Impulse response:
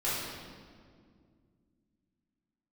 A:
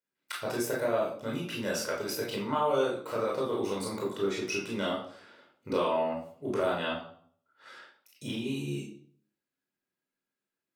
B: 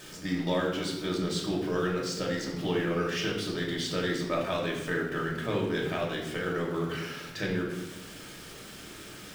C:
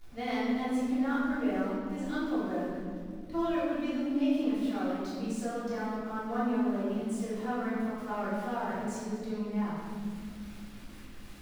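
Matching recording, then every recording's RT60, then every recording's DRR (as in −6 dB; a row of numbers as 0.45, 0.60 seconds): C; 0.55, 1.1, 2.1 seconds; −4.0, −2.5, −11.5 decibels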